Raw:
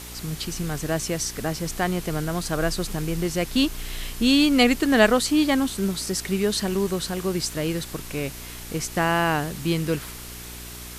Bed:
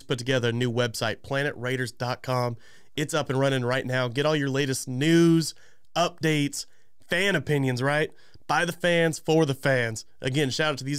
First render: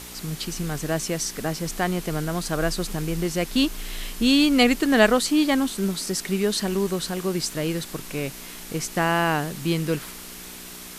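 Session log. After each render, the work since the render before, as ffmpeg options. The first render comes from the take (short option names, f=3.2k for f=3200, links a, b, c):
-af "bandreject=f=60:t=h:w=4,bandreject=f=120:t=h:w=4"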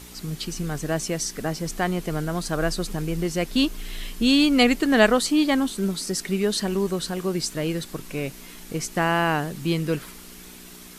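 -af "afftdn=nr=6:nf=-40"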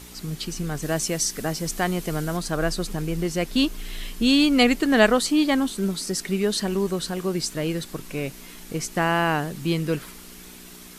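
-filter_complex "[0:a]asettb=1/sr,asplit=3[a][b][c];[a]atrim=end=0.824[d];[b]atrim=start=0.82:end=2.37,asetpts=PTS-STARTPTS,afade=t=in:d=0.004:c=qsin,afade=t=out:st=1.546:d=0.004:c=qsin,highshelf=f=4.2k:g=6[e];[c]atrim=start=2.366[f];[d][e]acrossfade=d=0.004:c1=hsin:c2=qsin[g];[g][f]acrossfade=d=0.004:c1=qsin:c2=hsin"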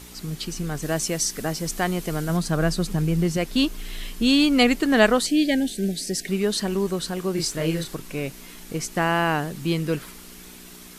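-filter_complex "[0:a]asettb=1/sr,asplit=3[a][b][c];[a]atrim=end=2.294[d];[b]atrim=start=2.29:end=3.37,asetpts=PTS-STARTPTS,afade=t=in:d=0.004:c=qsin,afade=t=out:st=1.076:d=0.004:c=qsin,equalizer=f=160:w=1.5:g=7[e];[c]atrim=start=3.366[f];[d][e]acrossfade=d=0.004:c1=hsin:c2=qsin[g];[g][f]acrossfade=d=0.004:c1=qsin:c2=hsin,asettb=1/sr,asplit=3[h][i][j];[h]atrim=end=5.264[k];[i]atrim=start=5.26:end=6.28,asetpts=PTS-STARTPTS,afade=t=in:d=0.004:c=qsin,afade=t=out:st=1.016:d=0.004:c=qsin,asuperstop=centerf=1100:order=12:qfactor=1.4[l];[j]atrim=start=6.276[m];[k][l]acrossfade=d=0.004:c1=hsin:c2=qsin[n];[n][m]acrossfade=d=0.004:c1=qsin:c2=hsin,asettb=1/sr,asplit=3[o][p][q];[o]atrim=end=7.344[r];[p]atrim=start=7.34:end=7.95,asetpts=PTS-STARTPTS,afade=t=in:d=0.004:c=qsin,afade=t=out:st=0.606:d=0.004:c=qsin,asplit=2[s][t];[t]adelay=31,volume=-3dB[u];[s][u]amix=inputs=2:normalize=0,atrim=end_sample=26901[v];[q]atrim=start=7.946[w];[r][v]acrossfade=d=0.004:c1=hsin:c2=qsin[x];[x][w]acrossfade=d=0.004:c1=qsin:c2=hsin"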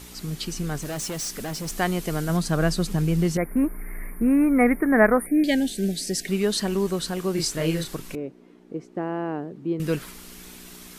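-filter_complex "[0:a]asettb=1/sr,asplit=3[a][b][c];[a]atrim=end=0.784[d];[b]atrim=start=0.78:end=1.79,asetpts=PTS-STARTPTS,afade=t=in:d=0.004:c=qsin,afade=t=out:st=1.006:d=0.004:c=qsin,asoftclip=type=hard:threshold=-28dB[e];[c]atrim=start=1.786[f];[d][e]acrossfade=d=0.004:c1=hsin:c2=qsin[g];[g][f]acrossfade=d=0.004:c1=qsin:c2=hsin,asettb=1/sr,asplit=3[h][i][j];[h]atrim=end=3.374[k];[i]atrim=start=3.37:end=5.44,asetpts=PTS-STARTPTS,afade=t=in:d=0.004:c=qsin,afade=t=out:st=2.066:d=0.004:c=qsin,asuperstop=centerf=4800:order=20:qfactor=0.68[l];[j]atrim=start=5.436[m];[k][l]acrossfade=d=0.004:c1=hsin:c2=qsin[n];[n][m]acrossfade=d=0.004:c1=qsin:c2=hsin,asettb=1/sr,asplit=3[o][p][q];[o]atrim=end=8.154[r];[p]atrim=start=8.15:end=9.8,asetpts=PTS-STARTPTS,afade=t=in:d=0.004:c=qsin,afade=t=out:st=1.646:d=0.004:c=qsin,bandpass=f=350:t=q:w=1.5[s];[q]atrim=start=9.796[t];[r][s]acrossfade=d=0.004:c1=hsin:c2=qsin[u];[u][t]acrossfade=d=0.004:c1=qsin:c2=hsin"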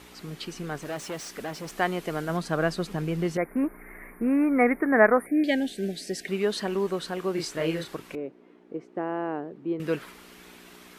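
-af "highpass=41,bass=f=250:g=-10,treble=f=4k:g=-12"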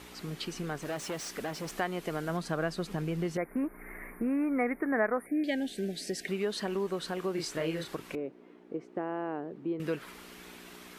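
-af "acompressor=threshold=-33dB:ratio=2"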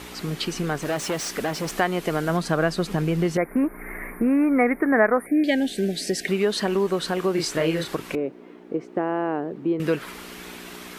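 -af "volume=10dB"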